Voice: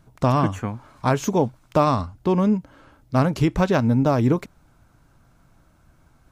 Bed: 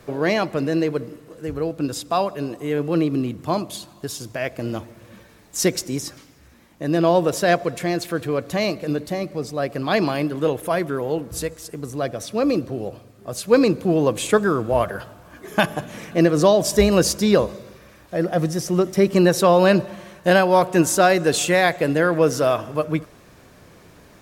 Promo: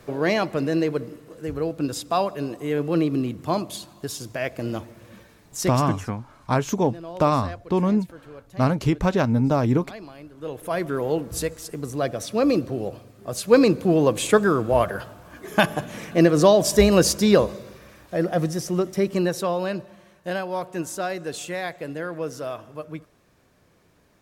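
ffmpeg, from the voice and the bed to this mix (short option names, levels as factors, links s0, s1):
-filter_complex "[0:a]adelay=5450,volume=0.841[s0];[1:a]volume=8.41,afade=t=out:st=5.18:d=0.91:silence=0.11885,afade=t=in:st=10.36:d=0.67:silence=0.1,afade=t=out:st=17.89:d=1.82:silence=0.237137[s1];[s0][s1]amix=inputs=2:normalize=0"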